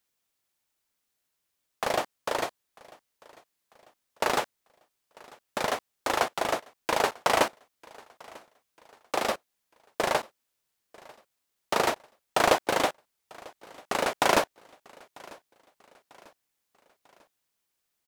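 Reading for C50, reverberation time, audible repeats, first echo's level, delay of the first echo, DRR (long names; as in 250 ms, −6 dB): no reverb audible, no reverb audible, 2, −24.0 dB, 945 ms, no reverb audible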